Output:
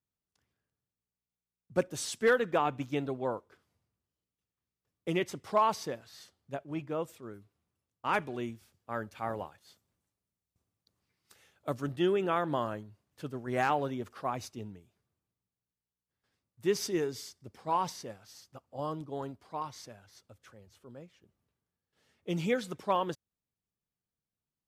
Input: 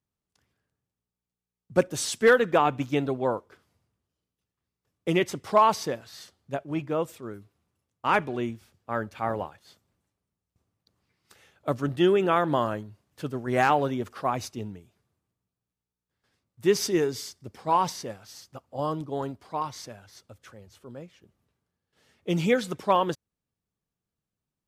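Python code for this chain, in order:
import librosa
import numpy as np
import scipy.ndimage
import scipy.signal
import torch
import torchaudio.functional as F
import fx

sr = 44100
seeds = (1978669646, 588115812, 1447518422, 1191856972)

y = fx.high_shelf(x, sr, hz=4700.0, db=6.0, at=(8.13, 11.92))
y = F.gain(torch.from_numpy(y), -7.0).numpy()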